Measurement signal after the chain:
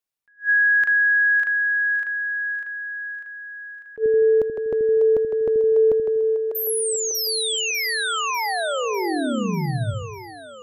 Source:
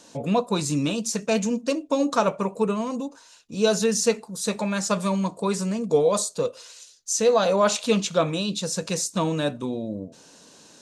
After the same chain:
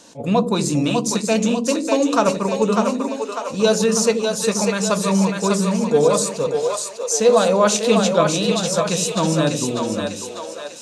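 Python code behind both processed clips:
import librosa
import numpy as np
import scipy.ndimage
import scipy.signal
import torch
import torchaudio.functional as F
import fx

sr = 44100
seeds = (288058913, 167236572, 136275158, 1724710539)

y = fx.echo_split(x, sr, split_hz=420.0, low_ms=81, high_ms=597, feedback_pct=52, wet_db=-4)
y = fx.attack_slew(y, sr, db_per_s=310.0)
y = y * 10.0 ** (4.0 / 20.0)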